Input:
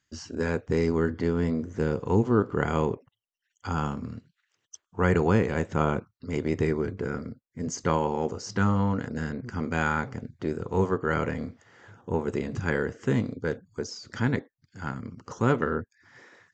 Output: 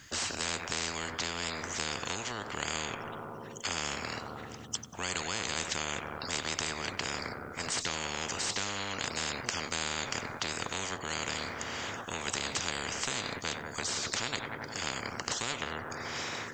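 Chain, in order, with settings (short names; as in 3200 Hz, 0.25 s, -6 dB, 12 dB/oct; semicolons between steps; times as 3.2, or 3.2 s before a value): compressor 2.5:1, threshold -26 dBFS, peak gain reduction 7 dB; on a send: darkening echo 94 ms, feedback 69%, low-pass 3100 Hz, level -19.5 dB; on the sum: spectral compressor 10:1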